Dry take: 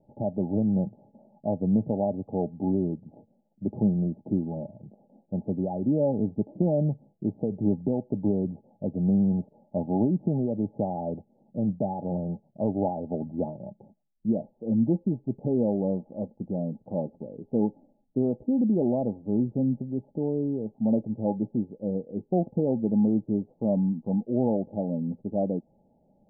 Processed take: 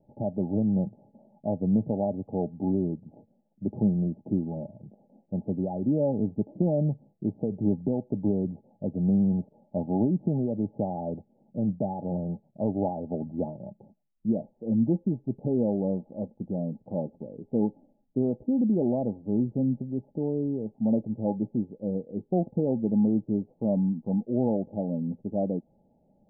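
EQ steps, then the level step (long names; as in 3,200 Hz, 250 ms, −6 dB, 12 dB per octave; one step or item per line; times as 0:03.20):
high-frequency loss of the air 460 metres
0.0 dB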